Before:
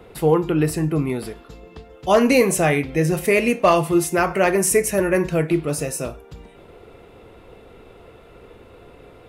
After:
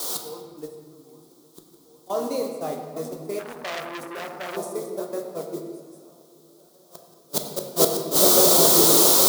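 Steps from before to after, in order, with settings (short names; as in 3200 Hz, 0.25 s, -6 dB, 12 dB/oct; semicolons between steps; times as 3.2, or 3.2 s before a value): darkening echo 0.812 s, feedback 66%, low-pass 1600 Hz, level -8 dB; in parallel at -1 dB: level quantiser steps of 18 dB; on the sum: added noise white -29 dBFS; band shelf 2100 Hz -16 dB 1.1 oct; flipped gate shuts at -15 dBFS, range -30 dB; HPF 290 Hz 12 dB/oct; gate -45 dBFS, range -16 dB; AGC gain up to 15.5 dB; on a send at -3 dB: reverb RT60 1.6 s, pre-delay 11 ms; 3.39–4.57 on the sum: core saturation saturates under 3600 Hz; gain -1 dB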